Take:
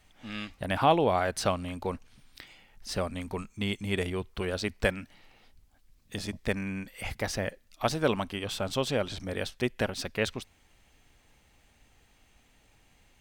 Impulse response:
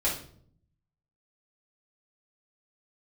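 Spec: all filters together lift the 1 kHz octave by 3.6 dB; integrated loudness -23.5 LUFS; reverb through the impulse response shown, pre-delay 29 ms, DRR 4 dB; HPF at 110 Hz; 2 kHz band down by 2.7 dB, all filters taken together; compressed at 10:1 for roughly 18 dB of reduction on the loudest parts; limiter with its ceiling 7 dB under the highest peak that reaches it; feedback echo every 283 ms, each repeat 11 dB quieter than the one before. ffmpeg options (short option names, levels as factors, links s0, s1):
-filter_complex "[0:a]highpass=110,equalizer=f=1000:t=o:g=6,equalizer=f=2000:t=o:g=-5.5,acompressor=threshold=0.0251:ratio=10,alimiter=level_in=1.19:limit=0.0631:level=0:latency=1,volume=0.841,aecho=1:1:283|566|849:0.282|0.0789|0.0221,asplit=2[s0][s1];[1:a]atrim=start_sample=2205,adelay=29[s2];[s1][s2]afir=irnorm=-1:irlink=0,volume=0.224[s3];[s0][s3]amix=inputs=2:normalize=0,volume=5.31"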